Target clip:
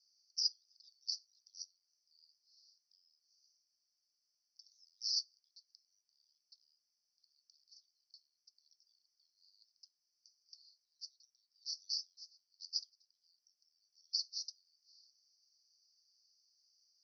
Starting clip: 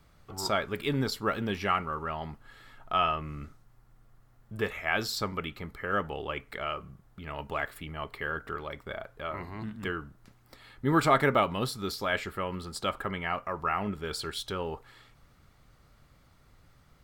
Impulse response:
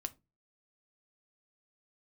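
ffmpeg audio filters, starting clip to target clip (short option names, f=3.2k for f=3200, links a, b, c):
-af "acompressor=threshold=-32dB:ratio=6,asuperpass=centerf=5200:order=12:qfactor=3.2,volume=6dB"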